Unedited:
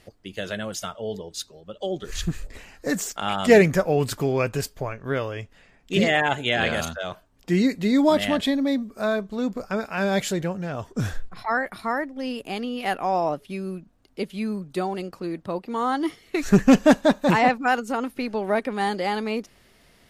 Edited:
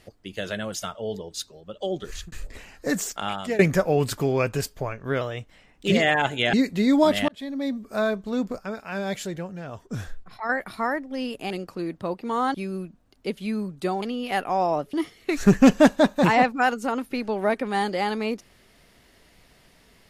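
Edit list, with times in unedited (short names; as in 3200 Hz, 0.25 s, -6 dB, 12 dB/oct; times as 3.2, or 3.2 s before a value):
2.04–2.32 fade out
3.15–3.59 fade out, to -22 dB
5.21–5.94 speed 110%
6.6–7.59 cut
8.34–8.95 fade in
9.64–11.55 gain -6 dB
12.56–13.47 swap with 14.95–15.99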